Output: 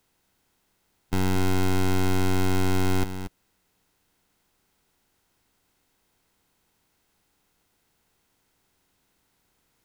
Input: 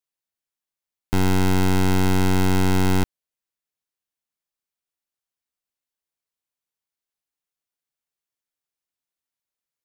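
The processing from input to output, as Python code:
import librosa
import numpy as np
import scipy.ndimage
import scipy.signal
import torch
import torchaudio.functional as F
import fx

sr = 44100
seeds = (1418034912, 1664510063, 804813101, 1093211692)

y = fx.bin_compress(x, sr, power=0.6)
y = y + 10.0 ** (-10.0 / 20.0) * np.pad(y, (int(232 * sr / 1000.0), 0))[:len(y)]
y = F.gain(torch.from_numpy(y), -5.0).numpy()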